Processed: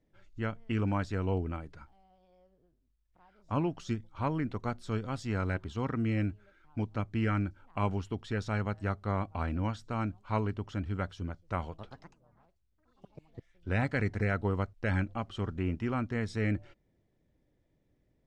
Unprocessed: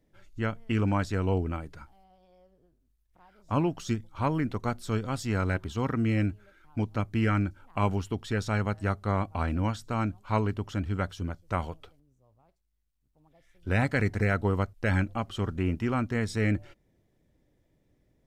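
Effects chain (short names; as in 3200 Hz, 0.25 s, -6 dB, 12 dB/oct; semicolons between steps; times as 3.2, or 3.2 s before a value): 11.66–13.69 echoes that change speed 0.125 s, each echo +4 st, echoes 3; air absorption 67 m; gain -4 dB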